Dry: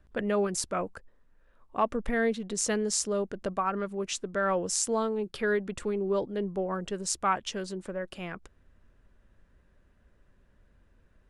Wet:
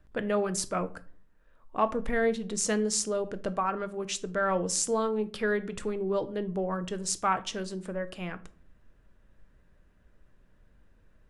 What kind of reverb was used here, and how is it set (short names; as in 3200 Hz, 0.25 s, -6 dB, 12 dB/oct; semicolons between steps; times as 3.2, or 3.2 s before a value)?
shoebox room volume 360 m³, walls furnished, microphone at 0.54 m